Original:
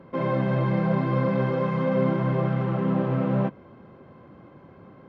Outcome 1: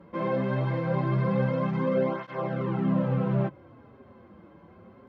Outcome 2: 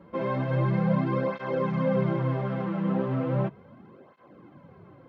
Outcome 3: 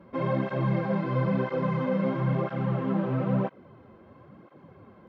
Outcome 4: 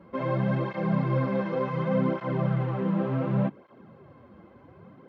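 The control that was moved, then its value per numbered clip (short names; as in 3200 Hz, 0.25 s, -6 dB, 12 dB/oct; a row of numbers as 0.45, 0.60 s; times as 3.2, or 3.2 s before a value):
tape flanging out of phase, nulls at: 0.22, 0.36, 1, 0.68 Hz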